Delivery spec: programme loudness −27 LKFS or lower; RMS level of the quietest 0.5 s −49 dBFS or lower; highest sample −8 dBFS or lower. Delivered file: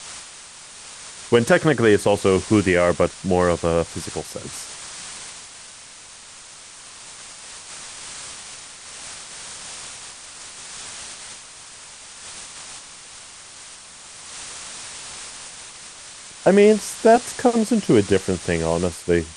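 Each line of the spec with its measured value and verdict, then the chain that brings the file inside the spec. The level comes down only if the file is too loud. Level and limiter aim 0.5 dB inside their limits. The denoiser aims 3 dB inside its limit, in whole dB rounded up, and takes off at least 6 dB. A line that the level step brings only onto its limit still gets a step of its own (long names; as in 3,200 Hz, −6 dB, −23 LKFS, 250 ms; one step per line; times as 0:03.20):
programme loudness −20.5 LKFS: out of spec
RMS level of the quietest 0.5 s −43 dBFS: out of spec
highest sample −4.5 dBFS: out of spec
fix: level −7 dB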